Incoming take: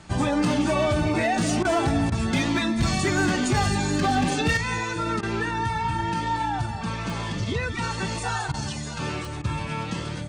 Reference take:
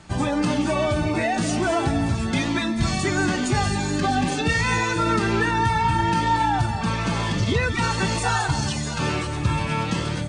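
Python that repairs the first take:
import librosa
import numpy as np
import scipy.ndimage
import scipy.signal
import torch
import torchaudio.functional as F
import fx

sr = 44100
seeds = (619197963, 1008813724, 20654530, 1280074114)

y = fx.fix_declip(x, sr, threshold_db=-16.0)
y = fx.fix_declick_ar(y, sr, threshold=10.0)
y = fx.fix_interpolate(y, sr, at_s=(1.63, 2.1, 5.21, 8.52, 9.42), length_ms=18.0)
y = fx.fix_level(y, sr, at_s=4.57, step_db=5.5)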